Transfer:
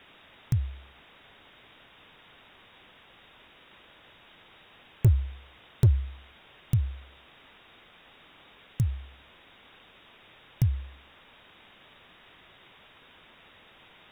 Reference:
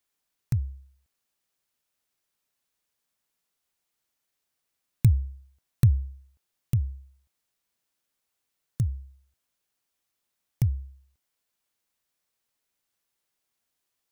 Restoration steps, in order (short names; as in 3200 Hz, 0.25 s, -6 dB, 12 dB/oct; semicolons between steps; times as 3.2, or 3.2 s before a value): clip repair -13.5 dBFS; noise print and reduce 25 dB